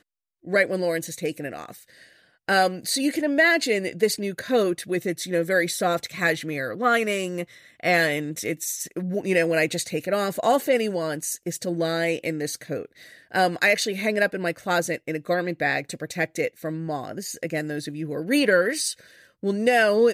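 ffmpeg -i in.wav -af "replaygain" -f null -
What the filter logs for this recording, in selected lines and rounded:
track_gain = +2.9 dB
track_peak = 0.320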